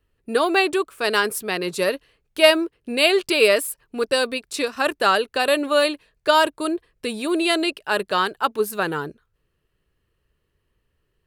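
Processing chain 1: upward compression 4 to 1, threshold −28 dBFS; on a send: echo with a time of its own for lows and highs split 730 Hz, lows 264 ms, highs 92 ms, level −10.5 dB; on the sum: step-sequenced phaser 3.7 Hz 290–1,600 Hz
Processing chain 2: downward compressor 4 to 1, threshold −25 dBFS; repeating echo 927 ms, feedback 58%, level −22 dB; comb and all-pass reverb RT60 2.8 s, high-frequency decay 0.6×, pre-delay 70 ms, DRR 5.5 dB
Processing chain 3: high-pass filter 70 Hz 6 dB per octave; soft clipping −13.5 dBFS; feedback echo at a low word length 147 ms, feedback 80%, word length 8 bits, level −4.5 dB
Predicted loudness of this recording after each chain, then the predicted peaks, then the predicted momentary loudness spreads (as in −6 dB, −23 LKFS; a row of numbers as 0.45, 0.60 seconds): −24.5, −27.5, −21.0 LKFS; −6.0, −12.5, −7.5 dBFS; 10, 7, 8 LU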